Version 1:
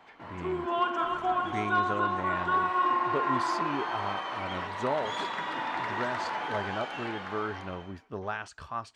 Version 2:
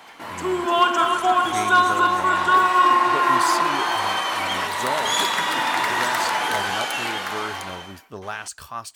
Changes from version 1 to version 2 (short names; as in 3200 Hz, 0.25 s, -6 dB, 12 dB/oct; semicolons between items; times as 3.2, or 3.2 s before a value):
background +7.5 dB; master: remove tape spacing loss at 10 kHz 26 dB